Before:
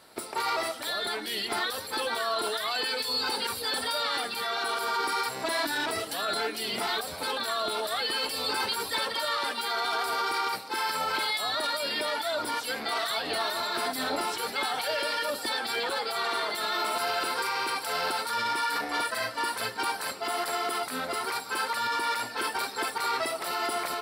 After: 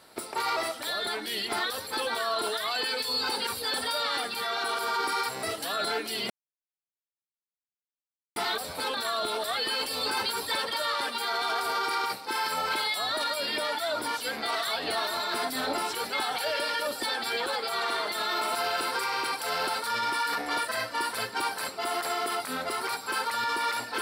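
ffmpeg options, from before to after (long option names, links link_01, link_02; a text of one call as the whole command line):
ffmpeg -i in.wav -filter_complex "[0:a]asplit=3[link_01][link_02][link_03];[link_01]atrim=end=5.432[link_04];[link_02]atrim=start=5.918:end=6.79,asetpts=PTS-STARTPTS,afade=type=out:start_time=0.868:duration=0.004:curve=hsin,apad=pad_dur=2.06[link_05];[link_03]atrim=start=6.79,asetpts=PTS-STARTPTS,afade=type=in:duration=0.004:curve=hsin[link_06];[link_05][link_06]concat=n=2:v=0:a=1[link_07];[link_04][link_07]acrossfade=duration=0.004:curve1=hsin:curve2=hsin" out.wav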